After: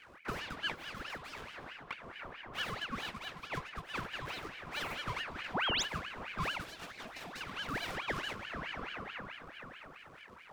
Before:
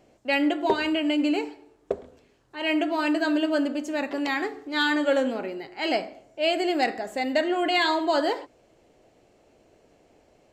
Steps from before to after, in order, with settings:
running median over 41 samples
multi-voice chorus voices 4, 0.32 Hz, delay 17 ms, depth 2.4 ms
on a send at −16 dB: low-shelf EQ 480 Hz +9.5 dB + convolution reverb RT60 4.5 s, pre-delay 27 ms
on the sum: downward compressor 12 to 1, threshold −43 dBFS, peak gain reduction 22.5 dB
Chebyshev band-stop filter 190–620 Hz, order 2
0:05.54–0:05.83: sound drawn into the spectrogram rise 250–5,900 Hz −44 dBFS
0:06.64–0:07.41: flat-topped bell 670 Hz −14.5 dB 1.3 octaves
ring modulator whose carrier an LFO sweeps 1,400 Hz, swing 70%, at 4.6 Hz
level +14.5 dB

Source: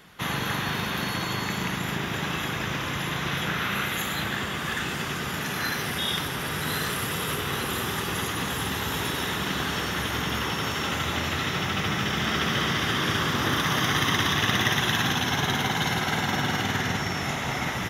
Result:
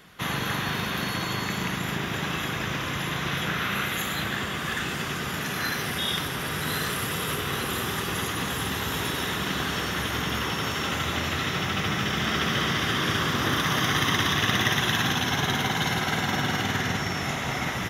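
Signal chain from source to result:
notch filter 870 Hz, Q 21

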